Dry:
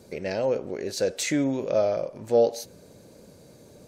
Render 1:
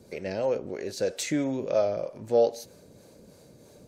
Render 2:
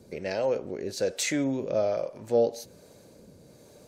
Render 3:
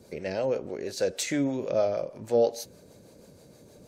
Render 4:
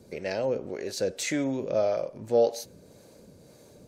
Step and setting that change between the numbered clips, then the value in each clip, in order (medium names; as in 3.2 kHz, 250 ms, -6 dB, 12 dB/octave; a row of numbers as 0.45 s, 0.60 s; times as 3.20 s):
harmonic tremolo, rate: 3.1 Hz, 1.2 Hz, 6.3 Hz, 1.8 Hz